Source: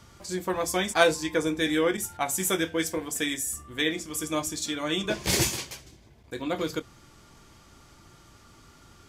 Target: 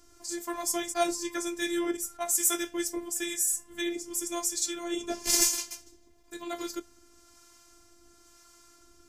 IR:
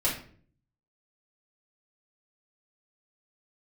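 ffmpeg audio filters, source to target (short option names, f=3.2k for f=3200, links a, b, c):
-filter_complex "[0:a]highshelf=f=4.6k:t=q:w=1.5:g=6.5,acrossover=split=610[a][b];[a]aeval=exprs='val(0)*(1-0.5/2+0.5/2*cos(2*PI*1*n/s))':c=same[c];[b]aeval=exprs='val(0)*(1-0.5/2-0.5/2*cos(2*PI*1*n/s))':c=same[d];[c][d]amix=inputs=2:normalize=0,afftfilt=real='hypot(re,im)*cos(PI*b)':imag='0':win_size=512:overlap=0.75"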